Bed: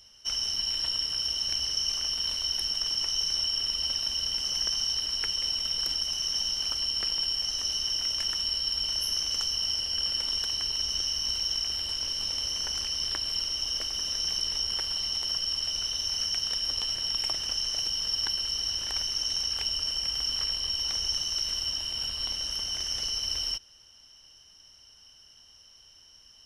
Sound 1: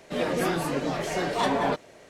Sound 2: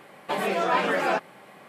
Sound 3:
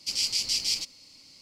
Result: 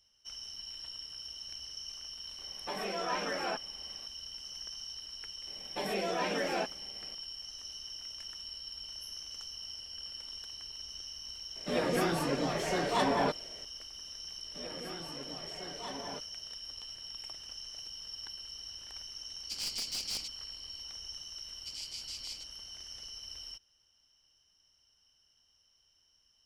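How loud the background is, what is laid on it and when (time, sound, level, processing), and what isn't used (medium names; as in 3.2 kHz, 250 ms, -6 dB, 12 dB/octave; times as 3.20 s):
bed -15 dB
2.38 s: add 2 -11.5 dB
5.47 s: add 2 -6.5 dB + peaking EQ 1.2 kHz -9 dB 0.94 oct
11.56 s: add 1 -4 dB
14.44 s: add 1 -18 dB
19.43 s: add 3 -9.5 dB + one-sided wavefolder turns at -22 dBFS
21.59 s: add 3 -16.5 dB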